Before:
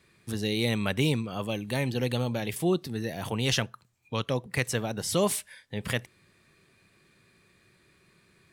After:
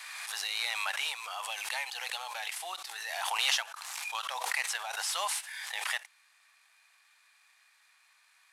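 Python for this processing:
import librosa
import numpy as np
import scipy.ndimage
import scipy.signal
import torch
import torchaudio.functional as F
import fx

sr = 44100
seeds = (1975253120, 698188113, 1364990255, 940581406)

y = fx.cvsd(x, sr, bps=64000)
y = scipy.signal.sosfilt(scipy.signal.ellip(4, 1.0, 70, 790.0, 'highpass', fs=sr, output='sos'), y)
y = fx.pre_swell(y, sr, db_per_s=26.0)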